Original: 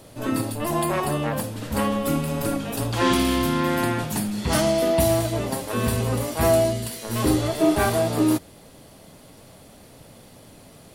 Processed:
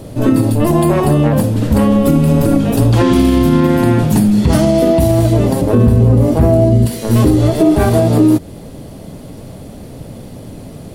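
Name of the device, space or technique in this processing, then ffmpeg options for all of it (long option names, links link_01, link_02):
mastering chain: -filter_complex "[0:a]asettb=1/sr,asplit=3[link_01][link_02][link_03];[link_01]atrim=end=5.614[link_04];[link_02]atrim=start=5.61:end=6.86,asetpts=PTS-STARTPTS,afade=type=in:duration=0.004:curve=qsin,afade=type=out:start_time=1.246:duration=0.004:curve=qsin,tiltshelf=frequency=1200:gain=6[link_05];[link_03]atrim=start=6.856[link_06];[link_04][link_05]acrossfade=duration=0.004:curve1=hsin:curve2=qsin[link_07];[link_07][link_06]acrossfade=duration=0.004:curve1=qsin:curve2=hsin,equalizer=frequency=1100:width_type=o:width=1.7:gain=-2.5,acompressor=threshold=-25dB:ratio=2,tiltshelf=frequency=730:gain=6.5,asoftclip=type=hard:threshold=-10.5dB,alimiter=level_in=14dB:limit=-1dB:release=50:level=0:latency=1,volume=-1dB"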